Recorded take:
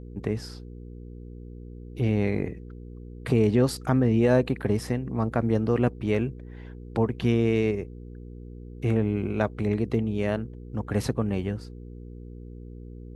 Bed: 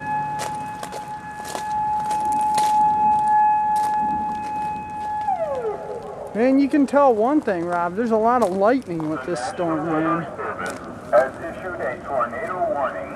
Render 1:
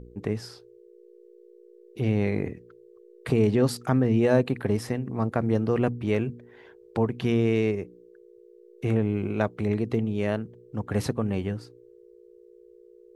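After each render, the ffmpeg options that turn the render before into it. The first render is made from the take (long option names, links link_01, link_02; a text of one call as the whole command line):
ffmpeg -i in.wav -af "bandreject=frequency=60:width_type=h:width=4,bandreject=frequency=120:width_type=h:width=4,bandreject=frequency=180:width_type=h:width=4,bandreject=frequency=240:width_type=h:width=4,bandreject=frequency=300:width_type=h:width=4" out.wav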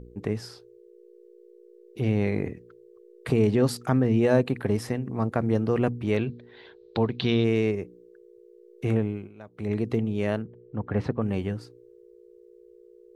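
ffmpeg -i in.wav -filter_complex "[0:a]asettb=1/sr,asplit=3[link_01][link_02][link_03];[link_01]atrim=end=6.174[link_04];[link_02]atrim=start=6.17:end=7.44,asetpts=PTS-STARTPTS,afade=type=in:duration=0.004:curve=qsin,afade=type=out:start_time=1.266:duration=0.004:curve=qsin,lowpass=frequency=4000:width_type=q:width=6.6[link_05];[link_03]atrim=start=7.436[link_06];[link_04][link_05]acrossfade=duration=0.004:curve1=hsin:curve2=qsin[link_07];[link_07][link_06]acrossfade=duration=0.004:curve1=qsin:curve2=hsin,asettb=1/sr,asplit=3[link_08][link_09][link_10];[link_08]atrim=end=10.424[link_11];[link_09]atrim=start=10.42:end=11.22,asetpts=PTS-STARTPTS,afade=type=in:duration=0.004:curve=qsin,afade=type=out:start_time=0.796:duration=0.004:curve=qsin,lowpass=2300[link_12];[link_10]atrim=start=11.216[link_13];[link_11][link_12]acrossfade=duration=0.004:curve1=hsin:curve2=qsin[link_14];[link_14][link_13]acrossfade=duration=0.004:curve1=qsin:curve2=hsin,asplit=3[link_15][link_16][link_17];[link_15]atrim=end=9.3,asetpts=PTS-STARTPTS,afade=type=out:start_time=8.97:duration=0.33:silence=0.1[link_18];[link_16]atrim=start=9.3:end=9.46,asetpts=PTS-STARTPTS,volume=-20dB[link_19];[link_17]atrim=start=9.46,asetpts=PTS-STARTPTS,afade=type=in:duration=0.33:silence=0.1[link_20];[link_18][link_19][link_20]concat=n=3:v=0:a=1" out.wav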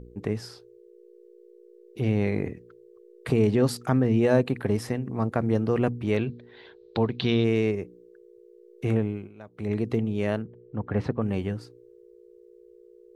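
ffmpeg -i in.wav -af anull out.wav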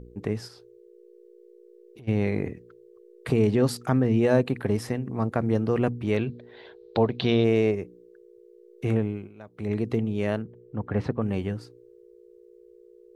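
ffmpeg -i in.wav -filter_complex "[0:a]asplit=3[link_01][link_02][link_03];[link_01]afade=type=out:start_time=0.47:duration=0.02[link_04];[link_02]acompressor=threshold=-45dB:ratio=6:attack=3.2:release=140:knee=1:detection=peak,afade=type=in:start_time=0.47:duration=0.02,afade=type=out:start_time=2.07:duration=0.02[link_05];[link_03]afade=type=in:start_time=2.07:duration=0.02[link_06];[link_04][link_05][link_06]amix=inputs=3:normalize=0,asettb=1/sr,asplit=3[link_07][link_08][link_09];[link_07]atrim=end=6.354[link_10];[link_08]atrim=start=6.35:end=7.74,asetpts=PTS-STARTPTS,afade=type=in:duration=0.004:curve=qsin,afade=type=out:start_time=1.386:duration=0.004:curve=qsin,equalizer=frequency=620:width=1.7:gain=7.5[link_11];[link_09]atrim=start=7.736[link_12];[link_10][link_11]acrossfade=duration=0.004:curve1=hsin:curve2=qsin[link_13];[link_13][link_12]acrossfade=duration=0.004:curve1=qsin:curve2=hsin" out.wav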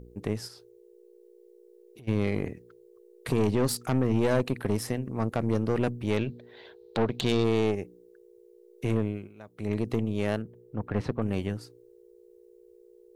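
ffmpeg -i in.wav -af "aeval=exprs='(tanh(8.91*val(0)+0.6)-tanh(0.6))/8.91':channel_layout=same,crystalizer=i=1.5:c=0" out.wav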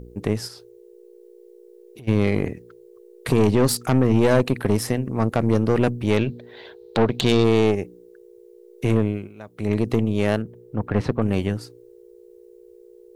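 ffmpeg -i in.wav -af "volume=7.5dB" out.wav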